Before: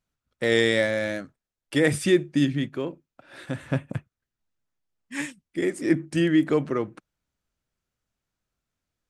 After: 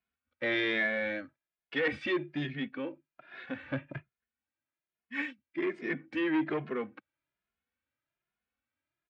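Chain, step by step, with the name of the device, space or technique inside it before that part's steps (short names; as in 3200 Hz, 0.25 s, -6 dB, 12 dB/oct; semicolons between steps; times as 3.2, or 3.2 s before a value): barber-pole flanger into a guitar amplifier (endless flanger 2.4 ms +1.2 Hz; soft clip -21.5 dBFS, distortion -11 dB; speaker cabinet 90–3700 Hz, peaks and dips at 110 Hz -10 dB, 170 Hz -9 dB, 430 Hz -4 dB, 1600 Hz +5 dB, 2300 Hz +6 dB); gain -2 dB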